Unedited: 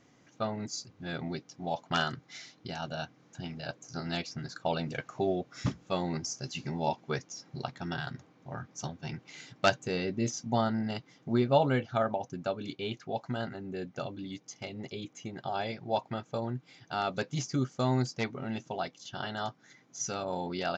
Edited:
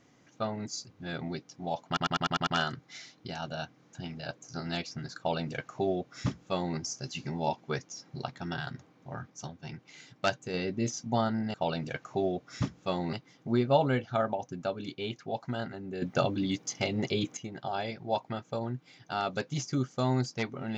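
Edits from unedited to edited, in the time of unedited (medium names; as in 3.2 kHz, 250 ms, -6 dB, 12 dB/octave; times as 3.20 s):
1.87 s: stutter 0.10 s, 7 plays
4.58–6.17 s: copy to 10.94 s
8.70–9.94 s: gain -3.5 dB
13.83–15.18 s: gain +10 dB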